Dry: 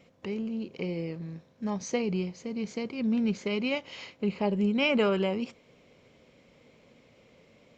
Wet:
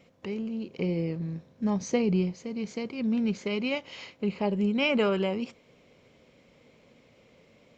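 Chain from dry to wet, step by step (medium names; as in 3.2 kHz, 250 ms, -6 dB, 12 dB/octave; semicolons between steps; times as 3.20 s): 0.78–2.35 s: bass shelf 410 Hz +6.5 dB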